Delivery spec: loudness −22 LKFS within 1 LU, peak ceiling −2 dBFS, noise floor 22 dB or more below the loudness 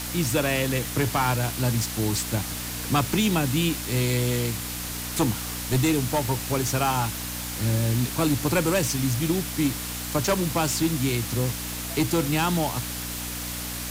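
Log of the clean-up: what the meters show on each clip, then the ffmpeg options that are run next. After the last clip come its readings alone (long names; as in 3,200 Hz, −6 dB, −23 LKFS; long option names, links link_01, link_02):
mains hum 60 Hz; hum harmonics up to 300 Hz; level of the hum −36 dBFS; background noise floor −33 dBFS; target noise floor −47 dBFS; integrated loudness −25.0 LKFS; sample peak −11.0 dBFS; target loudness −22.0 LKFS
→ -af "bandreject=frequency=60:width_type=h:width=4,bandreject=frequency=120:width_type=h:width=4,bandreject=frequency=180:width_type=h:width=4,bandreject=frequency=240:width_type=h:width=4,bandreject=frequency=300:width_type=h:width=4"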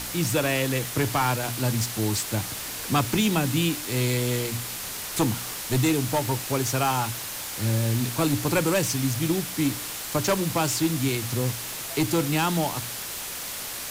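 mains hum none found; background noise floor −34 dBFS; target noise floor −48 dBFS
→ -af "afftdn=noise_reduction=14:noise_floor=-34"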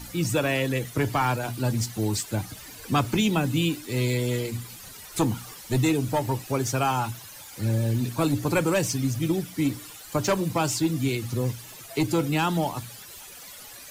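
background noise floor −44 dBFS; target noise floor −48 dBFS
→ -af "afftdn=noise_reduction=6:noise_floor=-44"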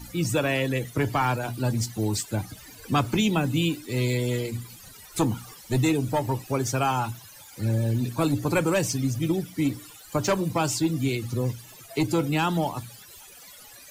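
background noise floor −48 dBFS; target noise floor −49 dBFS
→ -af "afftdn=noise_reduction=6:noise_floor=-48"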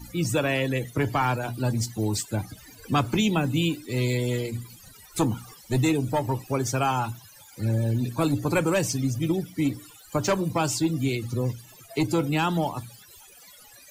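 background noise floor −51 dBFS; integrated loudness −26.5 LKFS; sample peak −12.0 dBFS; target loudness −22.0 LKFS
→ -af "volume=4.5dB"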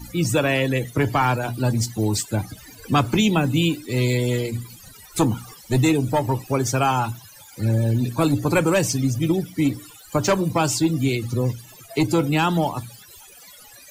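integrated loudness −22.0 LKFS; sample peak −7.5 dBFS; background noise floor −46 dBFS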